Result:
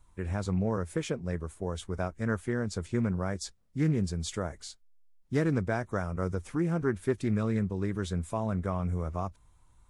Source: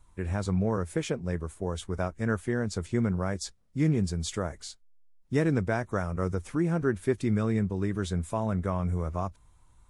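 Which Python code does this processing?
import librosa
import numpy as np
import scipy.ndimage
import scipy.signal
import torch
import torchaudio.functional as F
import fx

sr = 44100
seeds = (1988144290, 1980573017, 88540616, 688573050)

y = fx.doppler_dist(x, sr, depth_ms=0.16)
y = y * librosa.db_to_amplitude(-2.0)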